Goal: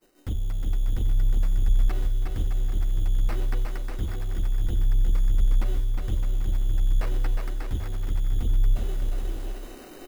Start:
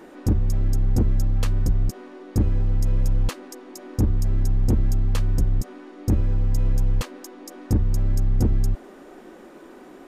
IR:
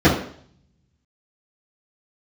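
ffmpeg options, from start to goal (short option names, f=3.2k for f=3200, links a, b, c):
-filter_complex "[0:a]agate=range=-33dB:threshold=-36dB:ratio=3:detection=peak,equalizer=f=125:t=o:w=1:g=-7,equalizer=f=250:t=o:w=1:g=-10,equalizer=f=500:t=o:w=1:g=-5,equalizer=f=1k:t=o:w=1:g=-10,equalizer=f=2k:t=o:w=1:g=-10,acrossover=split=450|900[a][b][c];[c]asoftclip=type=tanh:threshold=-35dB[d];[a][b][d]amix=inputs=3:normalize=0,flanger=delay=1.5:depth=7.3:regen=71:speed=0.57:shape=triangular,areverse,acompressor=mode=upward:threshold=-26dB:ratio=2.5,areverse,acrusher=samples=13:mix=1:aa=0.000001,acrossover=split=3600[e][f];[f]acompressor=threshold=-57dB:ratio=4:attack=1:release=60[g];[e][g]amix=inputs=2:normalize=0,highshelf=f=5.6k:g=11.5,aecho=1:1:360|612|788.4|911.9|998.3:0.631|0.398|0.251|0.158|0.1"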